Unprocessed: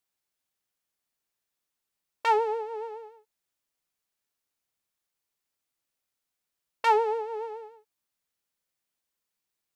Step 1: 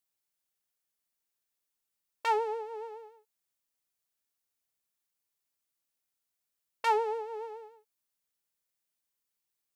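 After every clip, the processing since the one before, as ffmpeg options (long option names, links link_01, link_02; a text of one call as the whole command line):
ffmpeg -i in.wav -af "highshelf=frequency=6200:gain=6.5,volume=-5dB" out.wav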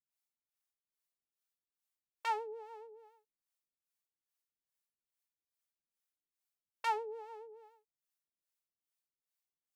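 ffmpeg -i in.wav -filter_complex "[0:a]acrossover=split=500[link_01][link_02];[link_01]aeval=exprs='val(0)*(1-1/2+1/2*cos(2*PI*2.4*n/s))':channel_layout=same[link_03];[link_02]aeval=exprs='val(0)*(1-1/2-1/2*cos(2*PI*2.4*n/s))':channel_layout=same[link_04];[link_03][link_04]amix=inputs=2:normalize=0,volume=-5dB" out.wav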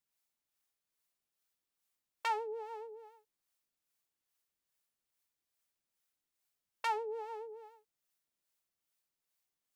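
ffmpeg -i in.wav -af "alimiter=level_in=6.5dB:limit=-24dB:level=0:latency=1:release=315,volume=-6.5dB,volume=5.5dB" out.wav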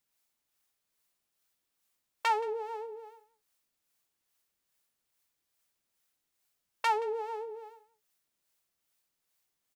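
ffmpeg -i in.wav -filter_complex "[0:a]asplit=2[link_01][link_02];[link_02]adelay=174.9,volume=-18dB,highshelf=frequency=4000:gain=-3.94[link_03];[link_01][link_03]amix=inputs=2:normalize=0,volume=6dB" out.wav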